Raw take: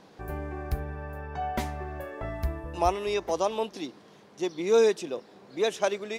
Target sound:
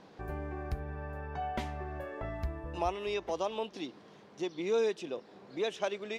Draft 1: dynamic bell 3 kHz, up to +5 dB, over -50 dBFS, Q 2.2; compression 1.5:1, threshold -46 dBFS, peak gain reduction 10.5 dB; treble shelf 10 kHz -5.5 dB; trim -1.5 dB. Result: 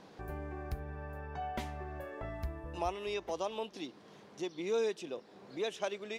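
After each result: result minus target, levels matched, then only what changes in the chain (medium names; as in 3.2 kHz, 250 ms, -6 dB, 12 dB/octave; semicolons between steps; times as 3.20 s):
8 kHz band +3.0 dB; compression: peak gain reduction +3 dB
change: treble shelf 10 kHz -17.5 dB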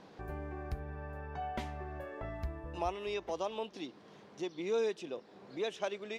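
compression: peak gain reduction +3 dB
change: compression 1.5:1, threshold -37 dBFS, peak gain reduction 7.5 dB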